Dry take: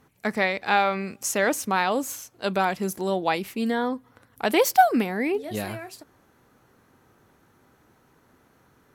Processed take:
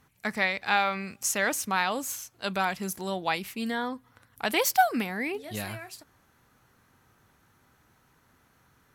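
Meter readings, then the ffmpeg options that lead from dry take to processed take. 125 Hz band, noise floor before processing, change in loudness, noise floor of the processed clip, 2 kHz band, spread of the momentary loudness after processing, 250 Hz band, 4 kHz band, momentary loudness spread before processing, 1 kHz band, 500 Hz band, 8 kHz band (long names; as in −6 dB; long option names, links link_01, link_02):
−4.5 dB, −62 dBFS, −4.0 dB, −65 dBFS, −1.5 dB, 11 LU, −6.5 dB, −0.5 dB, 12 LU, −4.5 dB, −7.5 dB, 0.0 dB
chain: -af "equalizer=frequency=390:width_type=o:width=2.2:gain=-9"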